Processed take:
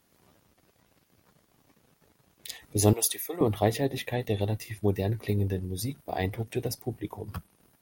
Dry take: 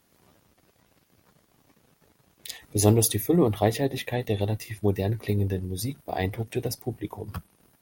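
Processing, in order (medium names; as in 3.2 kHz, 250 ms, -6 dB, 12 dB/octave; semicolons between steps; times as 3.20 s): 2.93–3.41 s: high-pass 740 Hz 12 dB/octave; trim -2 dB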